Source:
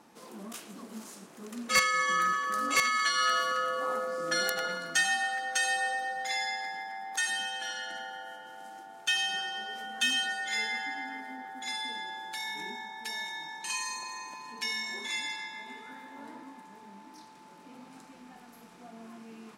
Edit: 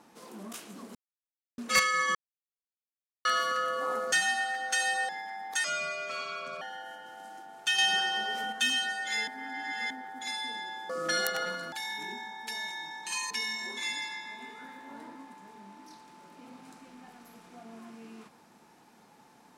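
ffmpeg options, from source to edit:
-filter_complex "[0:a]asplit=16[a][b][c][d][e][f][g][h][i][j][k][l][m][n][o][p];[a]atrim=end=0.95,asetpts=PTS-STARTPTS,afade=t=out:st=0.946:d=0.004:c=hsin[q];[b]atrim=start=0.95:end=1.58,asetpts=PTS-STARTPTS,volume=0[r];[c]atrim=start=1.58:end=2.15,asetpts=PTS-STARTPTS,afade=t=in:d=0.004:c=hsin,afade=t=out:st=0.566:d=0.004:c=hsin[s];[d]atrim=start=2.15:end=3.25,asetpts=PTS-STARTPTS,volume=0[t];[e]atrim=start=3.25:end=4.122,asetpts=PTS-STARTPTS,afade=t=in:d=0.004:c=hsin[u];[f]atrim=start=4.948:end=5.922[v];[g]atrim=start=6.708:end=7.264[w];[h]atrim=start=7.26:end=8.02,asetpts=PTS-STARTPTS,asetrate=34398,aresample=44100,atrim=end_sample=42969,asetpts=PTS-STARTPTS[x];[i]atrim=start=8.016:end=9.192[y];[j]atrim=start=9.188:end=9.932,asetpts=PTS-STARTPTS,volume=6dB[z];[k]atrim=start=9.928:end=10.682[aa];[l]atrim=start=10.678:end=11.312,asetpts=PTS-STARTPTS,areverse[ab];[m]atrim=start=11.308:end=12.302[ac];[n]atrim=start=4.118:end=4.952[ad];[o]atrim=start=12.298:end=13.882[ae];[p]atrim=start=14.578[af];[q][r][s][t][u]concat=n=5:v=0:a=1[ag];[ag][v]acrossfade=d=0.004:c1=hsin:c2=hsin[ah];[ah][w]acrossfade=d=0.004:c1=hsin:c2=hsin[ai];[ai][x]acrossfade=d=0.004:c1=hsin:c2=hsin[aj];[aj][y]acrossfade=d=0.004:c1=hsin:c2=hsin[ak];[ak][z]acrossfade=d=0.004:c1=hsin:c2=hsin[al];[al][aa]acrossfade=d=0.004:c1=hsin:c2=hsin[am];[am][ab]acrossfade=d=0.004:c1=hsin:c2=hsin[an];[an][ac]acrossfade=d=0.004:c1=hsin:c2=hsin[ao];[ao][ad]acrossfade=d=0.004:c1=hsin:c2=hsin[ap];[ap][ae]acrossfade=d=0.004:c1=hsin:c2=hsin[aq];[aq][af]acrossfade=d=0.004:c1=hsin:c2=hsin"

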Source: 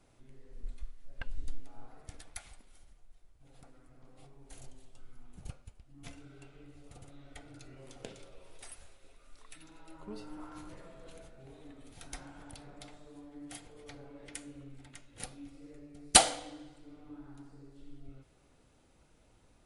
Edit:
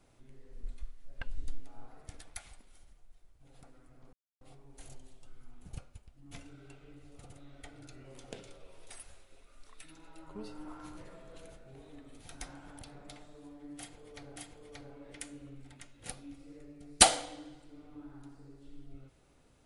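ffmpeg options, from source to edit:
-filter_complex "[0:a]asplit=3[a][b][c];[a]atrim=end=4.13,asetpts=PTS-STARTPTS,afade=t=out:st=4.126:d=0.004:c=hsin,apad=pad_dur=0.28[d];[b]atrim=start=4.13:end=14.082,asetpts=PTS-STARTPTS,afade=t=in:d=0.004:c=hsin[e];[c]atrim=start=13.498[f];[d][e]concat=n=2:v=0:a=1[g];[g][f]acrossfade=d=0.004:c1=hsin:c2=hsin"

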